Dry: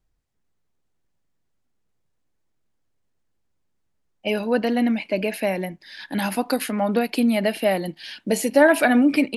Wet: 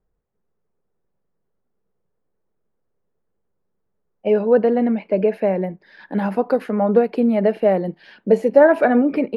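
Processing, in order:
drawn EQ curve 130 Hz 0 dB, 190 Hz +7 dB, 290 Hz −1 dB, 430 Hz +12 dB, 670 Hz +4 dB, 1,300 Hz +2 dB, 3,100 Hz −12 dB, 6,000 Hz −17 dB, 9,000 Hz −23 dB
level −1.5 dB

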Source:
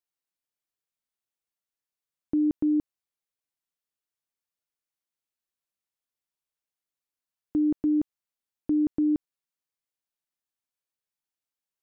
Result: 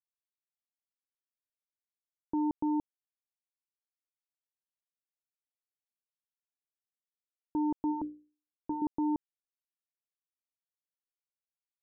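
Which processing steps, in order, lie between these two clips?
power curve on the samples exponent 3
0:07.90–0:08.82: mains-hum notches 60/120/180/240/300/360/420/480/540 Hz
low-pass that shuts in the quiet parts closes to 620 Hz, open at −22.5 dBFS
level −4.5 dB

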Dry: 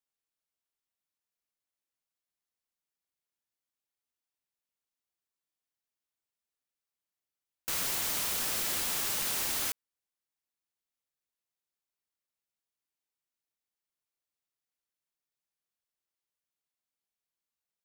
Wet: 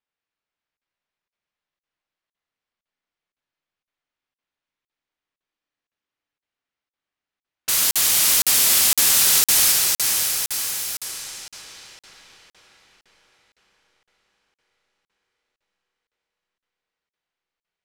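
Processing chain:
high-shelf EQ 2,200 Hz +11.5 dB
feedback delay with all-pass diffusion 522 ms, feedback 57%, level −5 dB
four-comb reverb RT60 2.9 s, combs from 27 ms, DRR 2.5 dB
low-pass that shuts in the quiet parts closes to 2,100 Hz, open at −26 dBFS
regular buffer underruns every 0.51 s, samples 2,048, zero, from 0:00.77
level +4 dB

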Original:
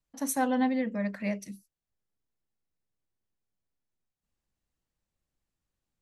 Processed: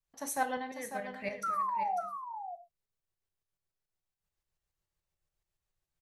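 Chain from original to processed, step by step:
parametric band 240 Hz −14 dB 0.62 octaves
0:00.61–0:01.17: downward compressor, threshold −34 dBFS, peak gain reduction 7 dB
shaped tremolo saw up 7 Hz, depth 60%
0:01.43–0:02.01: sound drawn into the spectrogram fall 680–1,400 Hz −33 dBFS
single-tap delay 547 ms −9 dB
reverb whose tail is shaped and stops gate 150 ms falling, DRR 8 dB

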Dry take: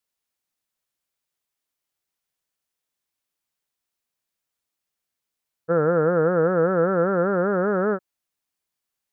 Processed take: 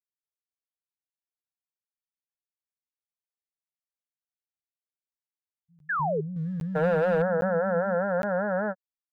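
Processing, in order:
parametric band 380 Hz −9 dB 0.38 octaves
in parallel at −1 dB: brickwall limiter −21.5 dBFS, peak gain reduction 9.5 dB
0:05.26–0:05.98: on the sum: time-frequency box erased 260–1,600 Hz
noise gate −21 dBFS, range −25 dB
high-frequency loss of the air 380 metres
phaser with its sweep stopped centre 1,800 Hz, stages 8
multiband delay without the direct sound lows, highs 760 ms, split 180 Hz
0:05.89–0:06.21: sound drawn into the spectrogram fall 380–1,800 Hz −27 dBFS
0:06.36–0:07.22: leveller curve on the samples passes 1
regular buffer underruns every 0.81 s, samples 512, zero, from 0:00.93

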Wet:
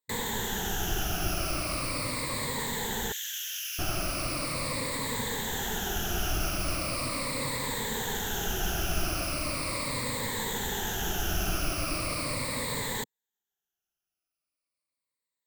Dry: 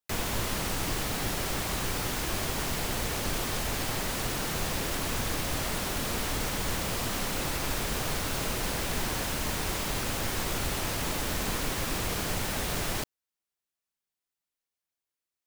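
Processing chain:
rippled gain that drifts along the octave scale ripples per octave 0.99, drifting −0.39 Hz, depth 17 dB
0:03.12–0:03.79: Butterworth high-pass 1,900 Hz 36 dB per octave
level −3.5 dB

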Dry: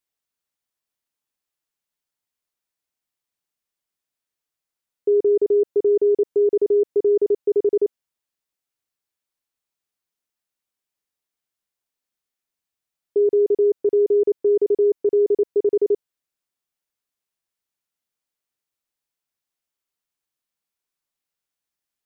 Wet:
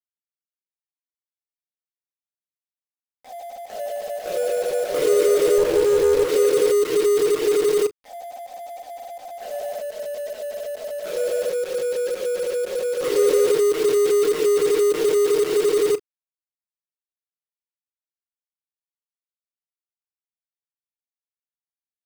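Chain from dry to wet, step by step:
peak hold with a rise ahead of every peak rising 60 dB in 0.49 s
bit reduction 5 bits
on a send at −3 dB: convolution reverb, pre-delay 6 ms
on the sum: delay with pitch and tempo change per echo 102 ms, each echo +3 semitones, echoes 3, each echo −6 dB
0:05.58–0:06.28: windowed peak hold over 9 samples

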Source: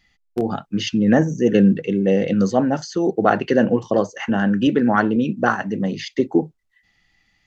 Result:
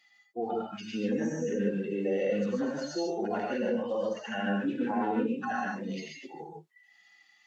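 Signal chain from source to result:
harmonic-percussive split with one part muted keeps harmonic
high-pass filter 520 Hz 12 dB per octave
brickwall limiter −24 dBFS, peak gain reduction 11.5 dB
reverb whose tail is shaped and stops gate 170 ms rising, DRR −1 dB

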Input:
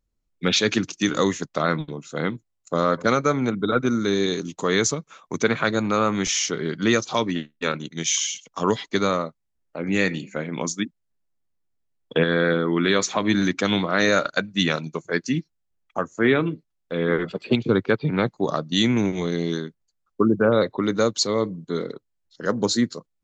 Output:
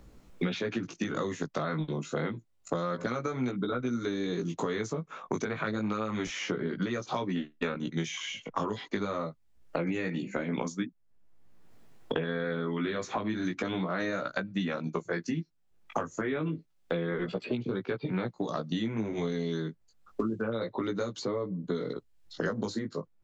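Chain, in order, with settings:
high-shelf EQ 3,000 Hz −11 dB
brickwall limiter −12.5 dBFS, peak gain reduction 5 dB
downward compressor, threshold −27 dBFS, peak gain reduction 10 dB
chorus effect 0.28 Hz, delay 16 ms, depth 3.2 ms
multiband upward and downward compressor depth 100%
level +1.5 dB

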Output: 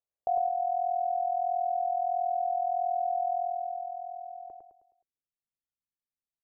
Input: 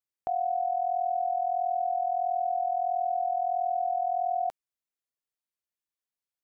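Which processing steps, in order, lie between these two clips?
parametric band 240 Hz −12 dB 1.6 octaves
in parallel at −1.5 dB: brickwall limiter −32 dBFS, peak gain reduction 7.5 dB
on the sum: low-pass filter sweep 620 Hz → 230 Hz, 0:03.32–0:05.51
repeating echo 105 ms, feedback 43%, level −4.5 dB
level −3.5 dB

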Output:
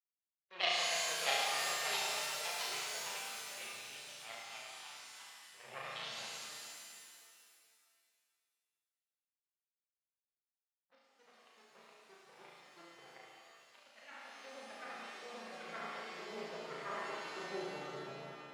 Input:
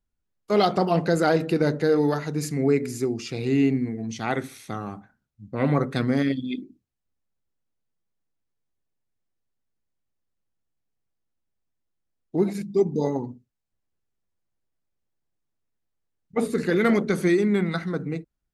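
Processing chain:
pitch shifter swept by a sawtooth −3.5 semitones, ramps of 151 ms
low-pass filter 4,000 Hz
phaser with its sweep stopped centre 660 Hz, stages 4
power curve on the samples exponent 2
band-pass filter sweep 2,700 Hz → 260 Hz, 0:16.44–0:18.06
delay with pitch and tempo change per echo 721 ms, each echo +2 semitones, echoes 3
flutter between parallel walls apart 6.1 metres, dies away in 0.73 s
reverb with rising layers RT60 2.1 s, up +7 semitones, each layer −2 dB, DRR 0 dB
level +3.5 dB

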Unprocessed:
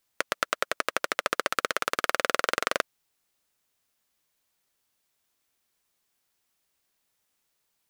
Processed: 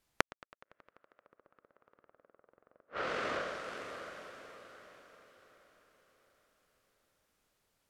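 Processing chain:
spectral tilt −2 dB per octave
on a send: feedback delay with all-pass diffusion 586 ms, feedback 41%, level −10 dB
on the sum: treble cut that deepens with the level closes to 1,000 Hz, closed at −25 dBFS
gate with flip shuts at −24 dBFS, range −39 dB
level +2 dB

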